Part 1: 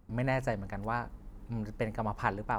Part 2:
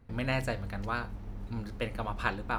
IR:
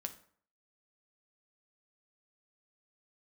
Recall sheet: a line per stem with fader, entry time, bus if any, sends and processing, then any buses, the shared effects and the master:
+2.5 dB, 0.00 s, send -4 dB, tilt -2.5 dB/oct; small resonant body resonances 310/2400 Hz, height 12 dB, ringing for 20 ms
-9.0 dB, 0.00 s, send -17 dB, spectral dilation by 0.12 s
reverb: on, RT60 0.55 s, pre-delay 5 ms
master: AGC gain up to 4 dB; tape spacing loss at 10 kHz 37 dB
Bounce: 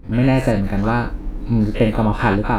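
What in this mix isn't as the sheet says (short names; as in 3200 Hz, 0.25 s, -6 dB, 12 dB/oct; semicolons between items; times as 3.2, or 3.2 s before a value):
stem 2 -9.0 dB -> -1.0 dB; master: missing tape spacing loss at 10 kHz 37 dB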